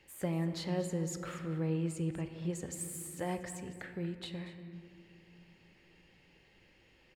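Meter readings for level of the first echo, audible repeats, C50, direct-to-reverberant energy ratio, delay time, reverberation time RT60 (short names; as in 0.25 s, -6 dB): -15.0 dB, 1, 9.0 dB, 7.5 dB, 0.235 s, 2.5 s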